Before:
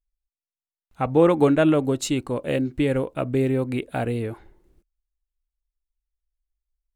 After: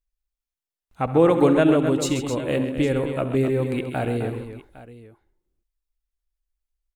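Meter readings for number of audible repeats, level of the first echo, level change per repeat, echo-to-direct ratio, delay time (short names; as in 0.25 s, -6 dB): 4, -16.0 dB, no steady repeat, -6.0 dB, 67 ms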